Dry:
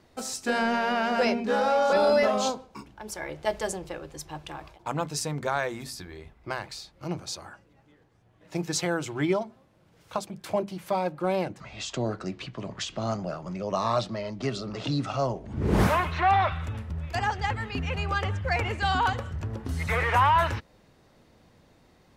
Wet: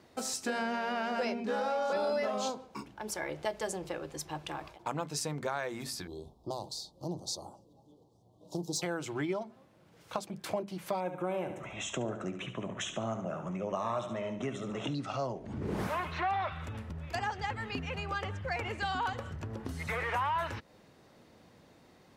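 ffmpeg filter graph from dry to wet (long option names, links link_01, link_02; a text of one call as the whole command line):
ffmpeg -i in.wav -filter_complex "[0:a]asettb=1/sr,asplit=3[link_01][link_02][link_03];[link_01]atrim=end=6.074[link_04];[link_02]atrim=start=6.07:end=8.82,asetpts=PTS-STARTPTS,afade=type=in:duration=0.004:curve=qsin,afade=type=out:start_time=2.746:duration=0.004:curve=qsin,volume=22.5dB,asoftclip=hard,volume=-22.5dB,asuperstop=centerf=1900:order=8:qfactor=0.71[link_05];[link_03]atrim=start=8.816[link_06];[link_04][link_05]acrossfade=duration=0.004:curve1=hsin:curve2=qsin[link_07];[link_07][link_06]acrossfade=duration=0.004:curve1=qsin:curve2=hsin,asettb=1/sr,asplit=3[link_08][link_09][link_10];[link_08]atrim=end=11.004[link_11];[link_09]atrim=start=11:end=14.95,asetpts=PTS-STARTPTS,afade=type=in:duration=0.004:curve=qsin,afade=type=out:start_time=3.946:duration=0.004:curve=qsin,asuperstop=centerf=4600:order=4:qfactor=1.8,aecho=1:1:71|142|213|284|355:0.316|0.142|0.064|0.0288|0.013,atrim=end_sample=174195[link_12];[link_10]atrim=start=14.946[link_13];[link_11][link_12]acrossfade=duration=0.004:curve1=hsin:curve2=qsin[link_14];[link_14][link_13]acrossfade=duration=0.004:curve1=qsin:curve2=hsin,lowshelf=frequency=430:gain=3,acompressor=threshold=-32dB:ratio=3,highpass=frequency=190:poles=1" out.wav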